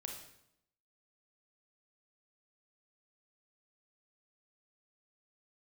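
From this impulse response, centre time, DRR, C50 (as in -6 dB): 33 ms, 1.5 dB, 4.5 dB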